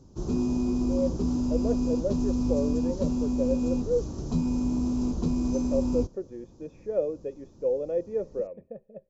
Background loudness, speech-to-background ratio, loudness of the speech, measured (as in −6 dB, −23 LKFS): −28.0 LKFS, −4.0 dB, −32.0 LKFS